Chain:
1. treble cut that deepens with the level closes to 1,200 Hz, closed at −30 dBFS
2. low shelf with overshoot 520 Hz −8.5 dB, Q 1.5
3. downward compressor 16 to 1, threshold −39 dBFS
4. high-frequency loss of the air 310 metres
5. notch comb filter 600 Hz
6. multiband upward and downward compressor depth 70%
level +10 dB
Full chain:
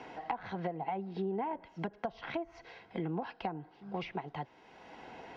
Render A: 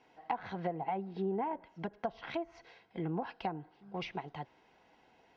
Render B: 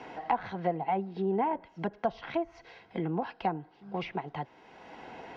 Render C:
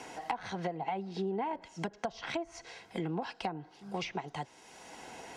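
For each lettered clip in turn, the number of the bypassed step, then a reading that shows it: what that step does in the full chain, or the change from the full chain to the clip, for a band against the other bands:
6, change in crest factor +2.5 dB
3, average gain reduction 3.0 dB
4, 4 kHz band +6.0 dB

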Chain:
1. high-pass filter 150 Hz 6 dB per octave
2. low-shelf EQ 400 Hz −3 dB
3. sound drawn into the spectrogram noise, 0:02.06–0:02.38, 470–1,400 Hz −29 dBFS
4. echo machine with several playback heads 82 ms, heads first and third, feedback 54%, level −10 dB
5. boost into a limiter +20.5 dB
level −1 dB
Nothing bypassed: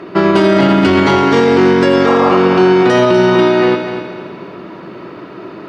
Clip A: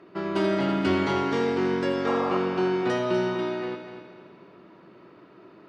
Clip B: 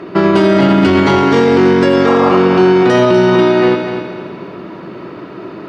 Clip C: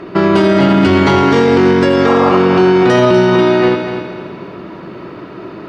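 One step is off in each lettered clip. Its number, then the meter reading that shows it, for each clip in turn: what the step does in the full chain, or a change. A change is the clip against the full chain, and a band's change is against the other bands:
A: 5, change in crest factor +5.5 dB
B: 2, 125 Hz band +2.0 dB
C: 1, 125 Hz band +2.5 dB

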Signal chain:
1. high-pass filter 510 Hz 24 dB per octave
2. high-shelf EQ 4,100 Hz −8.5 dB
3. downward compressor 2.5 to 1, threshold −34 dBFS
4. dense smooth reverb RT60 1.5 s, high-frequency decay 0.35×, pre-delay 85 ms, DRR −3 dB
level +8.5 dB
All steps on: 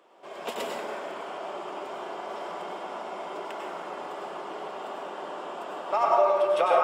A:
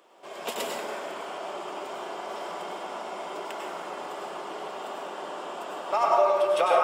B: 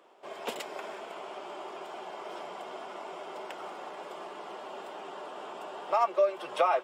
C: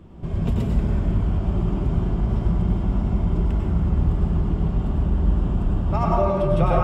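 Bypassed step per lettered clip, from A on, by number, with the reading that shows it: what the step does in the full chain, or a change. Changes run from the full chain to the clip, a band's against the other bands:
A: 2, 8 kHz band +6.5 dB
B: 4, change in integrated loudness −5.0 LU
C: 1, change in crest factor −7.5 dB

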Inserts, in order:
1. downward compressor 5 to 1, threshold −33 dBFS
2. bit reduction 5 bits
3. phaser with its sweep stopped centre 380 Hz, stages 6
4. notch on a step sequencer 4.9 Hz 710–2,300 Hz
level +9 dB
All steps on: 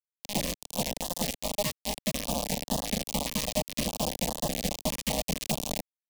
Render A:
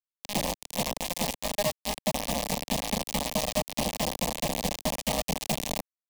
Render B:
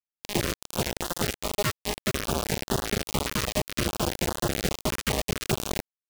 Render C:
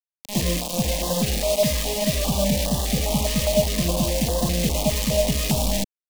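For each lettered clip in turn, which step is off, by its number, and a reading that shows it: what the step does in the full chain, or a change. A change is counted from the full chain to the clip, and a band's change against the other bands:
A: 4, 1 kHz band +3.0 dB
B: 3, 2 kHz band +4.5 dB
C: 1, average gain reduction 7.0 dB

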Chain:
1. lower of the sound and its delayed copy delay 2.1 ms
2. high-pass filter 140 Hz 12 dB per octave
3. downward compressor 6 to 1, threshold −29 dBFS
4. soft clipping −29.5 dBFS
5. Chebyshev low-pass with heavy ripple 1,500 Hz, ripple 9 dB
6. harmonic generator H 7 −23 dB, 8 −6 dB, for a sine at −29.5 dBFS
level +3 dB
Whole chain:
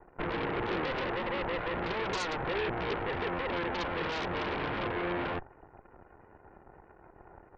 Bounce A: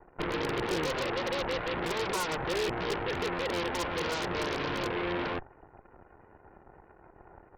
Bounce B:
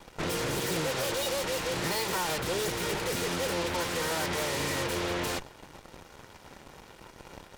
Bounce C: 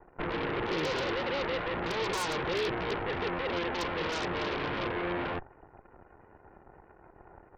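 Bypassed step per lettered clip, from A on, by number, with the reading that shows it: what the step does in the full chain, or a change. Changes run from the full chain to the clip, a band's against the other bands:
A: 4, distortion level −15 dB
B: 5, 8 kHz band +19.0 dB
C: 3, average gain reduction 2.0 dB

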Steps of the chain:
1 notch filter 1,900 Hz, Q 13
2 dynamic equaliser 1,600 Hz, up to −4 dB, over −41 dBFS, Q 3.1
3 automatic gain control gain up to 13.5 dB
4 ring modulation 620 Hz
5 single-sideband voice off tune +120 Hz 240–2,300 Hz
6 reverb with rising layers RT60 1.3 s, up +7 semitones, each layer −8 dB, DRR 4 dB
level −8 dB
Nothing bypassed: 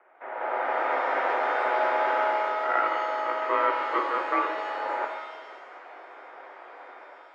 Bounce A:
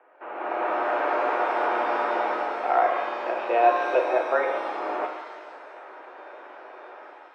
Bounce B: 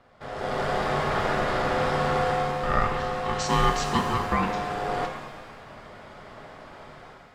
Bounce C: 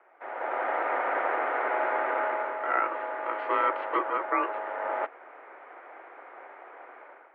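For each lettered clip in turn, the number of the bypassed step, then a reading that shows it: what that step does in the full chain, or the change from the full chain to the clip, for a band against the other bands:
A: 4, change in momentary loudness spread +1 LU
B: 5, 250 Hz band +9.5 dB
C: 6, change in integrated loudness −2.5 LU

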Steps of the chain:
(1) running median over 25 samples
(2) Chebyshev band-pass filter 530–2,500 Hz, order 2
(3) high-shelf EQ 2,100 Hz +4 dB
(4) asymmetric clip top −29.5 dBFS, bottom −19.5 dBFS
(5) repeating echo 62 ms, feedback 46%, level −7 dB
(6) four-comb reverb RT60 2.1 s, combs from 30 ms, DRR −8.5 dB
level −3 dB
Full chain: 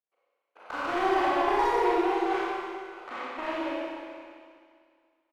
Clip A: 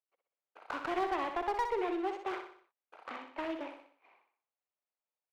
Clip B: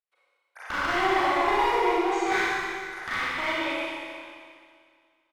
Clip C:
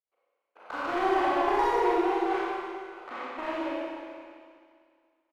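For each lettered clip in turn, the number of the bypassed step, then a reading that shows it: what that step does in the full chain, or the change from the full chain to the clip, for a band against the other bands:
6, echo-to-direct ratio 9.5 dB to −6.0 dB
1, 4 kHz band +7.0 dB
3, 4 kHz band −2.0 dB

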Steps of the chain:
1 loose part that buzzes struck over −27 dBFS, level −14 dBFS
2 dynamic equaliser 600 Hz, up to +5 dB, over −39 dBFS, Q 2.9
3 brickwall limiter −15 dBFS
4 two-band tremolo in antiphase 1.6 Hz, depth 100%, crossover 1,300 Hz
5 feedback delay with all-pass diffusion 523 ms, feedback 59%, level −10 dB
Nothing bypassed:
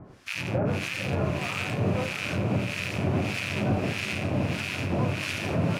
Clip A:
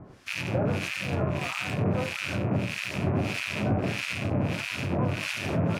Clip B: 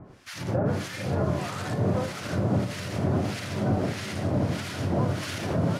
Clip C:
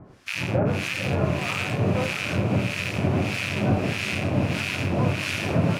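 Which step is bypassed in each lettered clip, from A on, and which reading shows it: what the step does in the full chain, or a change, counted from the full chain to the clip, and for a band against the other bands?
5, echo-to-direct ratio −8.0 dB to none audible
1, 2 kHz band −7.5 dB
3, average gain reduction 3.0 dB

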